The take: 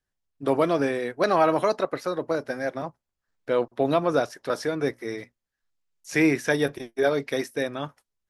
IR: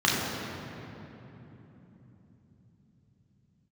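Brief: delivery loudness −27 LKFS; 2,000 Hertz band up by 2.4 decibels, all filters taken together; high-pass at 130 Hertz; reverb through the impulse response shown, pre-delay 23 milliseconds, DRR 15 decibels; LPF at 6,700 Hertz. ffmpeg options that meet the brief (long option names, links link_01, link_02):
-filter_complex "[0:a]highpass=130,lowpass=6700,equalizer=frequency=2000:width_type=o:gain=3,asplit=2[link_01][link_02];[1:a]atrim=start_sample=2205,adelay=23[link_03];[link_02][link_03]afir=irnorm=-1:irlink=0,volume=-31.5dB[link_04];[link_01][link_04]amix=inputs=2:normalize=0,volume=-2dB"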